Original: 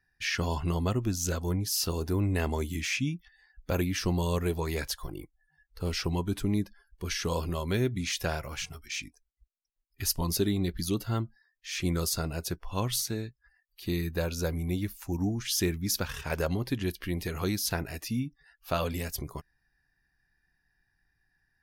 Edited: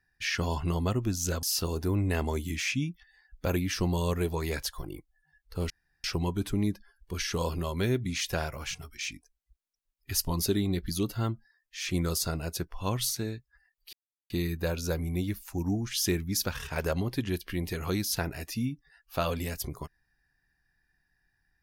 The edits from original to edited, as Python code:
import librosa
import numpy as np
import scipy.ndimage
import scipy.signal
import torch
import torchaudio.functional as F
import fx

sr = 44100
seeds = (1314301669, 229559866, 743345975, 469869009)

y = fx.edit(x, sr, fx.cut(start_s=1.43, length_s=0.25),
    fx.insert_room_tone(at_s=5.95, length_s=0.34),
    fx.insert_silence(at_s=13.84, length_s=0.37), tone=tone)